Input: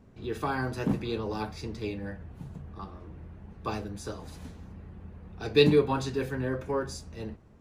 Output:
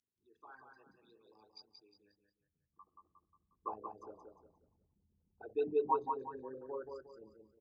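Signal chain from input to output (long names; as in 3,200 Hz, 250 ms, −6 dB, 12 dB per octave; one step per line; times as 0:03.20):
spectral envelope exaggerated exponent 3
parametric band 170 Hz −6.5 dB 1.6 octaves
mains-hum notches 60/120/180 Hz
repeating echo 179 ms, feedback 33%, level −5 dB
band-pass filter sweep 6,000 Hz → 910 Hz, 0:02.37–0:03.70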